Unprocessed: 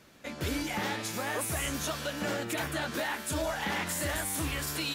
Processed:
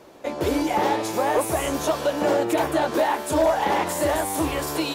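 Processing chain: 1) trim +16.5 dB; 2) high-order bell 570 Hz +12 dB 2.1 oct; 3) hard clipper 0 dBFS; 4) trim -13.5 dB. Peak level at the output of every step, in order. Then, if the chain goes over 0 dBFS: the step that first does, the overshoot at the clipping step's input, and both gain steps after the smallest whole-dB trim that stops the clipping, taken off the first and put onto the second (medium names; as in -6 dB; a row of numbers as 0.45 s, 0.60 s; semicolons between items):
-4.5 dBFS, +4.5 dBFS, 0.0 dBFS, -13.5 dBFS; step 2, 4.5 dB; step 1 +11.5 dB, step 4 -8.5 dB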